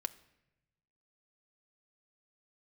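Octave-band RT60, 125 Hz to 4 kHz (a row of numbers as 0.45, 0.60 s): 1.7, 1.2, 1.0, 0.80, 0.95, 0.70 s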